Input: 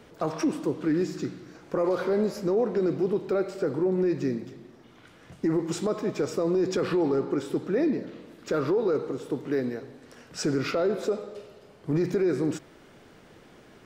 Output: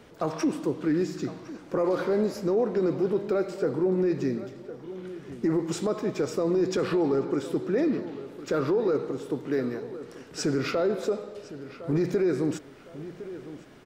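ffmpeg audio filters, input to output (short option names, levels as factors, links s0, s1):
-filter_complex "[0:a]asplit=2[s0][s1];[s1]adelay=1059,lowpass=f=3200:p=1,volume=0.188,asplit=2[s2][s3];[s3]adelay=1059,lowpass=f=3200:p=1,volume=0.35,asplit=2[s4][s5];[s5]adelay=1059,lowpass=f=3200:p=1,volume=0.35[s6];[s0][s2][s4][s6]amix=inputs=4:normalize=0"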